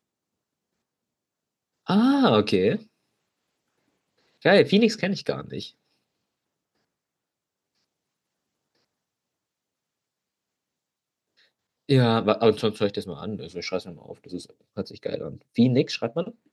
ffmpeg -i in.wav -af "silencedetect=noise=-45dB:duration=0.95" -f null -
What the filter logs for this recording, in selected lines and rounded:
silence_start: 0.00
silence_end: 1.87 | silence_duration: 1.87
silence_start: 2.83
silence_end: 4.42 | silence_duration: 1.59
silence_start: 5.70
silence_end: 11.89 | silence_duration: 6.19